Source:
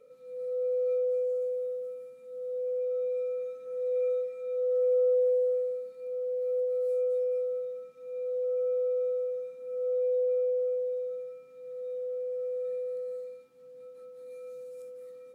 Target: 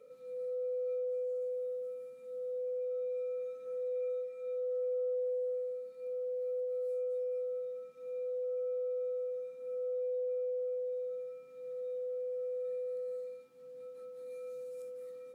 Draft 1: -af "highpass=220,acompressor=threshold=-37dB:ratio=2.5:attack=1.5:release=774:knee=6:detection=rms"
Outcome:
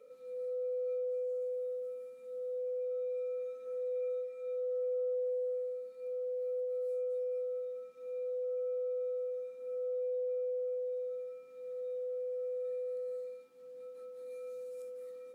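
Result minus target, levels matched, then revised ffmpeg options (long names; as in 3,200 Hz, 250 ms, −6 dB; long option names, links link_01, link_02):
125 Hz band −6.0 dB
-af "highpass=92,acompressor=threshold=-37dB:ratio=2.5:attack=1.5:release=774:knee=6:detection=rms"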